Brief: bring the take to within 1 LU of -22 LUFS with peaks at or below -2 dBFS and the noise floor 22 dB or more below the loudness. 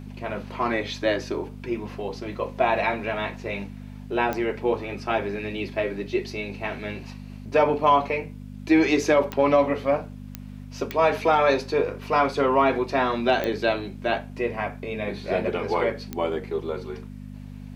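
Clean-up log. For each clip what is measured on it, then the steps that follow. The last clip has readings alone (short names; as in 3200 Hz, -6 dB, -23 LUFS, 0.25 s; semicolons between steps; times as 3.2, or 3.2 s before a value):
clicks 6; hum 50 Hz; harmonics up to 250 Hz; hum level -37 dBFS; loudness -25.0 LUFS; peak -7.0 dBFS; loudness target -22.0 LUFS
-> de-click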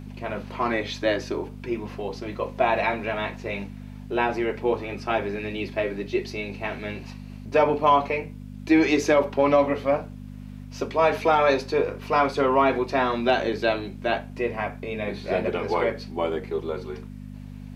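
clicks 0; hum 50 Hz; harmonics up to 250 Hz; hum level -37 dBFS
-> de-hum 50 Hz, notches 5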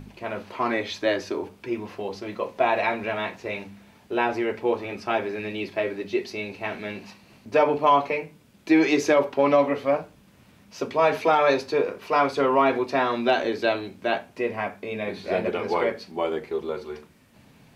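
hum none; loudness -25.0 LUFS; peak -7.0 dBFS; loudness target -22.0 LUFS
-> gain +3 dB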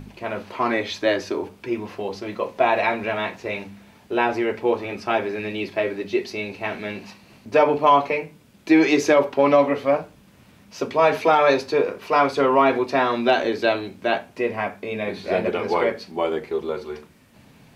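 loudness -22.0 LUFS; peak -4.0 dBFS; noise floor -52 dBFS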